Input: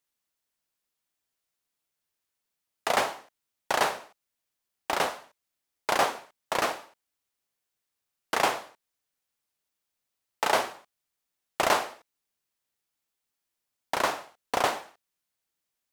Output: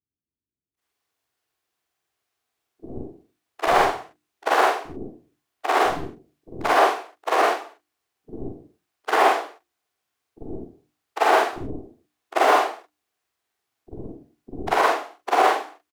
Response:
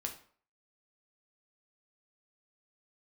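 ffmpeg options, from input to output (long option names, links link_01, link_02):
-filter_complex "[0:a]afftfilt=real='re':imag='-im':win_size=4096:overlap=0.75,highpass=65,equalizer=frequency=1700:width=0.36:gain=6.5,bandreject=frequency=50:width_type=h:width=6,bandreject=frequency=100:width_type=h:width=6,bandreject=frequency=150:width_type=h:width=6,bandreject=frequency=200:width_type=h:width=6,bandreject=frequency=250:width_type=h:width=6,bandreject=frequency=300:width_type=h:width=6,bandreject=frequency=350:width_type=h:width=6,asplit=3[link_01][link_02][link_03];[link_02]asetrate=22050,aresample=44100,atempo=2,volume=-15dB[link_04];[link_03]asetrate=35002,aresample=44100,atempo=1.25992,volume=-8dB[link_05];[link_01][link_04][link_05]amix=inputs=3:normalize=0,tiltshelf=frequency=800:gain=4.5,acrossover=split=110|1000|2100[link_06][link_07][link_08][link_09];[link_07]aecho=1:1:2.7:0.51[link_10];[link_09]asoftclip=type=hard:threshold=-38.5dB[link_11];[link_06][link_10][link_08][link_11]amix=inputs=4:normalize=0,aeval=exprs='0.316*(cos(1*acos(clip(val(0)/0.316,-1,1)))-cos(1*PI/2))+0.0251*(cos(4*acos(clip(val(0)/0.316,-1,1)))-cos(4*PI/2))+0.0251*(cos(5*acos(clip(val(0)/0.316,-1,1)))-cos(5*PI/2))':channel_layout=same,acrossover=split=290[link_12][link_13];[link_13]adelay=800[link_14];[link_12][link_14]amix=inputs=2:normalize=0,volume=5.5dB"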